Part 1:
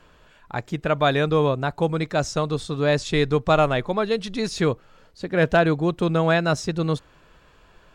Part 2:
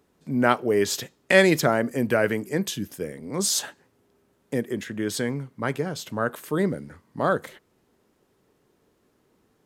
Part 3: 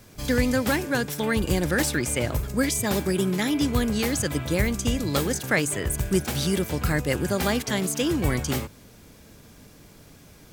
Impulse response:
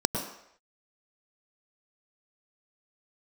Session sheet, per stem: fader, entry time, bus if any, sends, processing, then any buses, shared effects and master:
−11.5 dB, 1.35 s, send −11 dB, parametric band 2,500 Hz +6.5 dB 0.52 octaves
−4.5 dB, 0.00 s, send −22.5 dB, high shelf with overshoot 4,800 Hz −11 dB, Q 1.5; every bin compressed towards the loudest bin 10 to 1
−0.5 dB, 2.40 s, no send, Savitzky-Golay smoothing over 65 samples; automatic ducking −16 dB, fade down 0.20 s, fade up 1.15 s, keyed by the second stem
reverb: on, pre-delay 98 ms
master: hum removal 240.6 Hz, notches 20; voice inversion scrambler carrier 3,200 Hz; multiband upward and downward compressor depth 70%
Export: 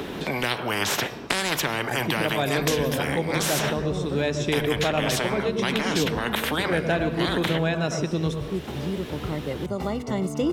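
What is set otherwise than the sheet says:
stem 3 −0.5 dB → +6.0 dB
master: missing voice inversion scrambler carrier 3,200 Hz

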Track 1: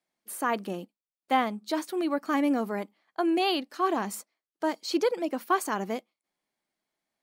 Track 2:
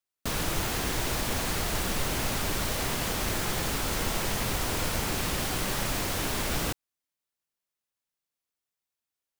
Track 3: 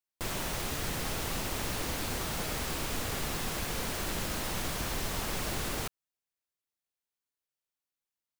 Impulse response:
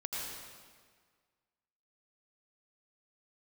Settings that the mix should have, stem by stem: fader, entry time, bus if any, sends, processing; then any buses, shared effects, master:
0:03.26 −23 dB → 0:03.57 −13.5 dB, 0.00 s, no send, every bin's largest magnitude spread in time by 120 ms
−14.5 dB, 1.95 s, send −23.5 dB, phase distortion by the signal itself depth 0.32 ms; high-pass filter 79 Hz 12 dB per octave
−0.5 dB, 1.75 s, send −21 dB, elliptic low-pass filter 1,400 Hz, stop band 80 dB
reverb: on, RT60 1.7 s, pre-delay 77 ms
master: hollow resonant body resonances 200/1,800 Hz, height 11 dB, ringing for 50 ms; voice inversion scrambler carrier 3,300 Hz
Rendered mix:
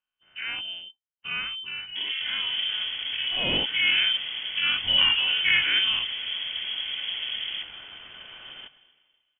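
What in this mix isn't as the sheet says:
stem 1 −23.0 dB → −11.5 dB
reverb return +9.0 dB

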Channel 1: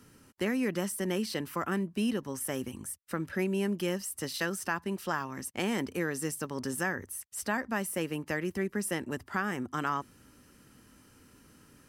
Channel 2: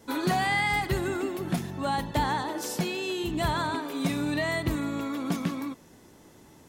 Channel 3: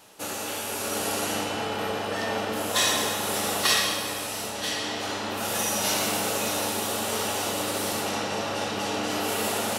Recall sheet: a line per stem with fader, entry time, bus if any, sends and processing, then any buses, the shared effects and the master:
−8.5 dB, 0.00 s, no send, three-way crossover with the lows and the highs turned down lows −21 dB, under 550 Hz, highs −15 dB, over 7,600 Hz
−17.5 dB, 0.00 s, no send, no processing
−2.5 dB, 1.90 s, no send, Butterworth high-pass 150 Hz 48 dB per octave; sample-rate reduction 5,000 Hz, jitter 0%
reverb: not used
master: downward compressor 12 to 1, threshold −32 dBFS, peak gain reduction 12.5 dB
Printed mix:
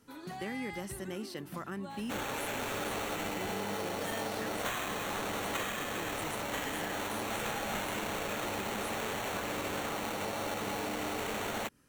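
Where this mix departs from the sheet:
stem 1: missing three-way crossover with the lows and the highs turned down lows −21 dB, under 550 Hz, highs −15 dB, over 7,600 Hz
stem 3: missing Butterworth high-pass 150 Hz 48 dB per octave

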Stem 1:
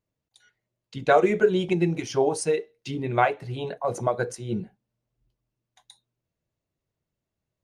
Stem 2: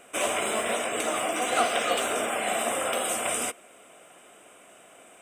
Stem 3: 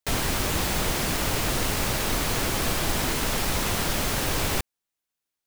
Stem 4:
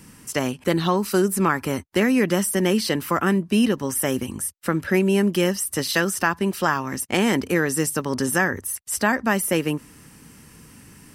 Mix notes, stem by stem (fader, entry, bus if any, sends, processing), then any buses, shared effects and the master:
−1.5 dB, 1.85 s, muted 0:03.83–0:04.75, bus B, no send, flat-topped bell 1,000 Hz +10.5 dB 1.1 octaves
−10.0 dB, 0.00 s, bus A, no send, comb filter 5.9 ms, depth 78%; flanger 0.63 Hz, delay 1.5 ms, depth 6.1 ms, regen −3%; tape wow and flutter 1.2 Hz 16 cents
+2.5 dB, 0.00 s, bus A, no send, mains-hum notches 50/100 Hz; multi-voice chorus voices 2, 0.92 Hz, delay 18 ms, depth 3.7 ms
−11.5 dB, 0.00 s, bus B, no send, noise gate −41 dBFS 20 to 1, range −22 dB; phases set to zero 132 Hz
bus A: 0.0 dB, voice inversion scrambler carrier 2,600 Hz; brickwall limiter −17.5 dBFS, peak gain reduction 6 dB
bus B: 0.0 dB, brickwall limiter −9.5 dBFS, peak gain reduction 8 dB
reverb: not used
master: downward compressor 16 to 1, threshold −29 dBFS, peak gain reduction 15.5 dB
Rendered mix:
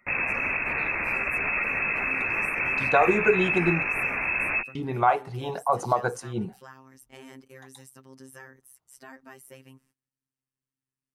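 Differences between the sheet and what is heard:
stem 4 −11.5 dB → −23.5 dB
master: missing downward compressor 16 to 1, threshold −29 dBFS, peak gain reduction 15.5 dB

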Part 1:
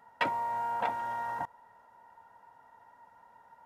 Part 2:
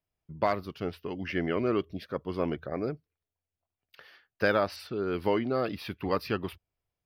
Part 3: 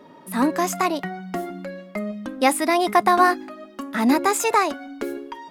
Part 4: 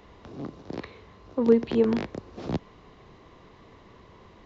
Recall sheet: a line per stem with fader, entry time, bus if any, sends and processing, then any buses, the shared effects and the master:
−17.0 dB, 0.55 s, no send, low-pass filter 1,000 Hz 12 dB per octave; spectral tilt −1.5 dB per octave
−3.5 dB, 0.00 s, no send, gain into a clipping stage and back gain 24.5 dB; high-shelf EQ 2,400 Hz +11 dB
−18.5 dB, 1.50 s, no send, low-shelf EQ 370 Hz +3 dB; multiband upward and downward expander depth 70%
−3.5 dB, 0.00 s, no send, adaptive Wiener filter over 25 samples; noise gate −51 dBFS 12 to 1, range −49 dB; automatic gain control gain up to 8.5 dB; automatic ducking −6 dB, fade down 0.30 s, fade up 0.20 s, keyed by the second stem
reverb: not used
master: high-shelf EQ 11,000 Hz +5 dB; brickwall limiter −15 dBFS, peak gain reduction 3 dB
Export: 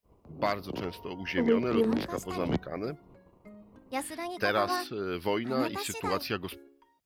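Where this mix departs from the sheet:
stem 2: missing gain into a clipping stage and back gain 24.5 dB
master: missing high-shelf EQ 11,000 Hz +5 dB

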